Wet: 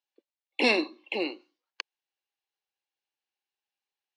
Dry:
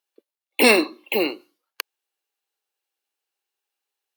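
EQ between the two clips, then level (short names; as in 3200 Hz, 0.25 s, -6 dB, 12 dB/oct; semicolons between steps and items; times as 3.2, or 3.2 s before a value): dynamic EQ 1500 Hz, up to -5 dB, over -33 dBFS, Q 1; air absorption 73 m; speaker cabinet 270–6900 Hz, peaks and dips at 430 Hz -6 dB, 620 Hz -3 dB, 1300 Hz -7 dB; -4.0 dB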